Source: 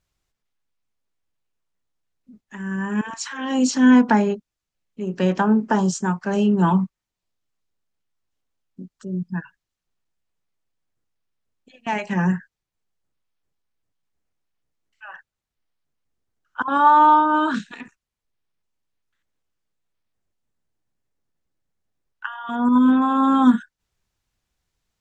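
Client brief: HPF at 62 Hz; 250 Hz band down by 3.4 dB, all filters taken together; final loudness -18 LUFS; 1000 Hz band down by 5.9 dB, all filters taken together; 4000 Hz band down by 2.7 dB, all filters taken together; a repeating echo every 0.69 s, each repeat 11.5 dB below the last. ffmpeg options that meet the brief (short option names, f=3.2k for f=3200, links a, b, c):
-af "highpass=62,equalizer=f=250:t=o:g=-3.5,equalizer=f=1k:t=o:g=-6.5,equalizer=f=4k:t=o:g=-3.5,aecho=1:1:690|1380|2070:0.266|0.0718|0.0194,volume=6.5dB"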